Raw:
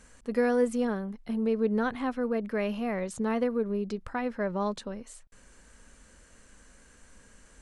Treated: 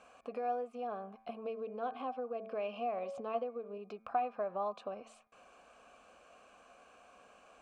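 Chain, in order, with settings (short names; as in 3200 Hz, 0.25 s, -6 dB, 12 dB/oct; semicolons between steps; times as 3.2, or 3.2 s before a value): de-hum 111 Hz, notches 22; de-esser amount 100%; 1.45–3.78 thirty-one-band EQ 250 Hz +6 dB, 500 Hz +7 dB, 3150 Hz +6 dB, 5000 Hz +7 dB; compressor 6:1, threshold -37 dBFS, peak gain reduction 18.5 dB; vowel filter a; gain +14.5 dB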